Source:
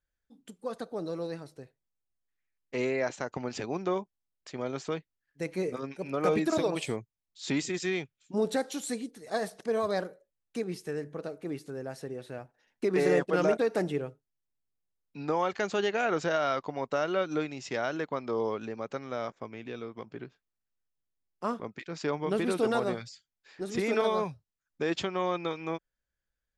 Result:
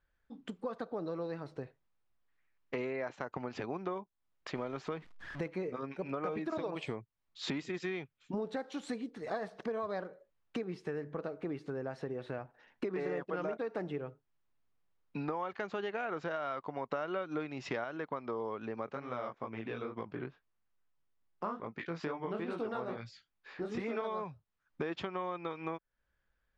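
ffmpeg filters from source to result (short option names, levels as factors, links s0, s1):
-filter_complex "[0:a]asettb=1/sr,asplit=3[s0][s1][s2];[s0]atrim=end=4.554[s3];[s1]atrim=start=4.55:end=5.48,asetpts=PTS-STARTPTS,afade=t=in:d=0.004:c=qsin,afade=t=out:st=0.926:d=0.004:c=qsin,aeval=exprs='val(0)+0.5*0.00447*sgn(val(0))':c=same[s4];[s2]atrim=start=5.476[s5];[s3][s4]acrossfade=d=0.004:c1=hsin:c2=qsin[s6];[s6][s5]acrossfade=d=0.004:c1=qsin:c2=hsin,asplit=3[s7][s8][s9];[s7]afade=t=out:st=18.87:d=0.02[s10];[s8]flanger=delay=17:depth=7.2:speed=2.3,afade=t=in:st=18.87:d=0.02,afade=t=out:st=23.97:d=0.02[s11];[s9]afade=t=in:st=23.97:d=0.02[s12];[s10][s11][s12]amix=inputs=3:normalize=0,asplit=3[s13][s14][s15];[s13]atrim=end=16.902[s16];[s14]atrim=start=16.898:end=17.842,asetpts=PTS-STARTPTS,volume=1.78[s17];[s15]atrim=start=17.838[s18];[s16][s17]acrossfade=d=0.004:c1=hsin:c2=hsin[s19];[s19][s18]acrossfade=d=0.004:c1=hsin:c2=hsin,lowpass=3100,equalizer=f=1100:w=1.6:g=4.5,acompressor=threshold=0.00631:ratio=5,volume=2.37"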